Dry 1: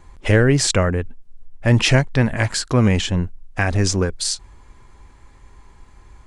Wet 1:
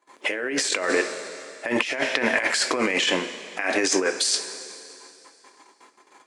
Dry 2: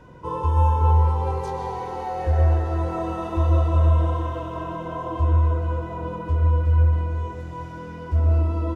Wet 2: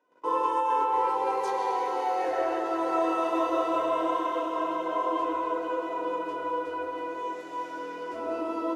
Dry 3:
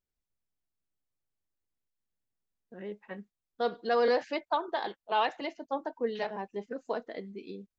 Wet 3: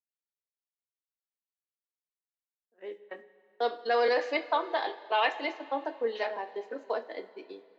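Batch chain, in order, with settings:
gate -42 dBFS, range -23 dB; high-pass 330 Hz 24 dB/octave; dynamic bell 2.2 kHz, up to +7 dB, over -42 dBFS, Q 1.8; two-slope reverb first 0.23 s, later 2.6 s, from -18 dB, DRR 7 dB; compressor with a negative ratio -25 dBFS, ratio -1; trim +1 dB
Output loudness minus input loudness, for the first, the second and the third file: -5.0 LU, -6.0 LU, +1.5 LU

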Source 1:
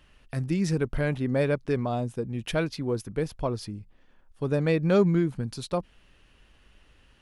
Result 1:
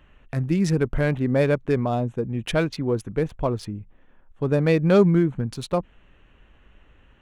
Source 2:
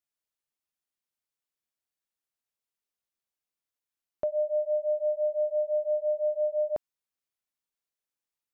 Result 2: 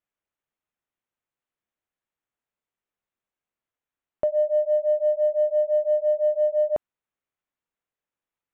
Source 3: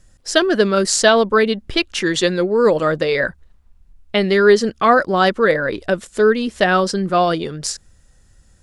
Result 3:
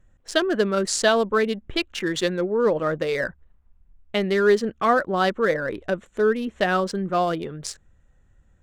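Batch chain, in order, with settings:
local Wiener filter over 9 samples; normalise loudness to -23 LUFS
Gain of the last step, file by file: +5.0 dB, +6.0 dB, -6.0 dB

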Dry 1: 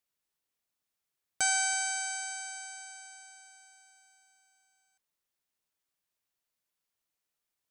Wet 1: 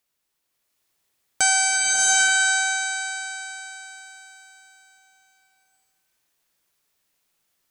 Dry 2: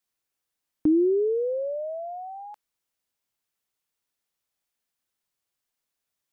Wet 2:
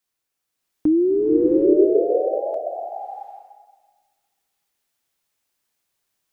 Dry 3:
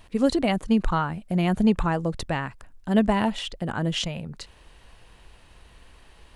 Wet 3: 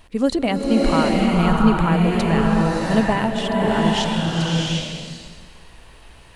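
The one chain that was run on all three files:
hum notches 50/100/150/200 Hz; swelling reverb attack 740 ms, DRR -3.5 dB; normalise loudness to -19 LUFS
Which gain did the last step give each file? +9.0 dB, +3.0 dB, +2.0 dB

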